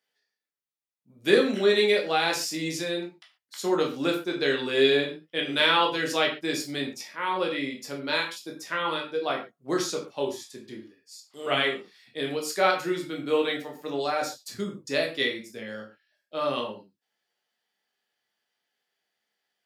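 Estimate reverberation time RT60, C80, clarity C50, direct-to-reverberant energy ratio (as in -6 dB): not exponential, 13.0 dB, 8.5 dB, -0.5 dB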